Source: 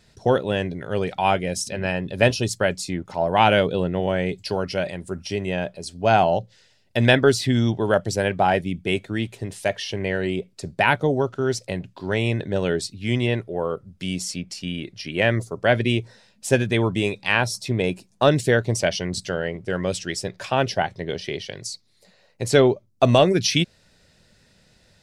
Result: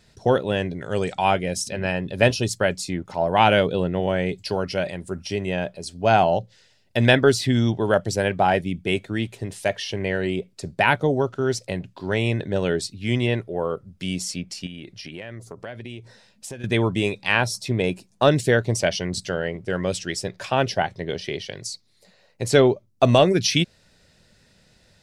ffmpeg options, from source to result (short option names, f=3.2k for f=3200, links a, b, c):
-filter_complex "[0:a]asettb=1/sr,asplit=3[a][b][c];[a]atrim=end=0.814[d];[b]atrim=start=0.81:end=1.25,asetpts=PTS-STARTPTS,afade=t=in:d=0.004:c=qsin,afade=t=out:st=0.436:d=0.004:c=qsin,lowpass=f=7.8k:t=q:w=6.8[e];[c]atrim=start=1.246[f];[d][e]acrossfade=d=0.004:c1=hsin:c2=qsin[g];[g][f]acrossfade=d=0.004:c1=qsin:c2=hsin,asettb=1/sr,asplit=3[h][i][j];[h]atrim=end=14.664[k];[i]atrim=start=14.66:end=16.64,asetpts=PTS-STARTPTS,afade=t=in:d=0.004:c=qsin,afade=t=out:st=1.976:d=0.004:c=qsin,acompressor=threshold=-33dB:ratio=6:attack=3.2:release=140:knee=1:detection=peak[l];[j]atrim=start=16.636[m];[k][l]acrossfade=d=0.004:c1=hsin:c2=qsin[n];[n][m]acrossfade=d=0.004:c1=qsin:c2=hsin"